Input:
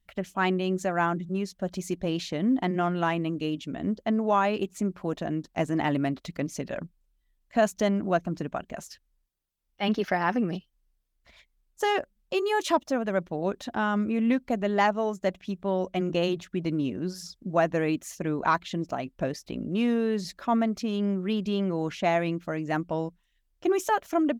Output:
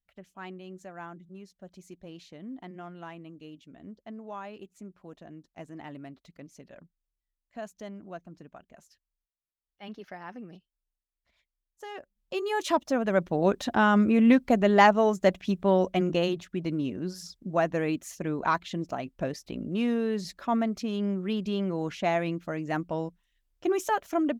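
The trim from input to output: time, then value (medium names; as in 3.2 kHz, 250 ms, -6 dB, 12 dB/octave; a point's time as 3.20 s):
11.89 s -16.5 dB
12.33 s -5 dB
13.43 s +5 dB
15.73 s +5 dB
16.38 s -2 dB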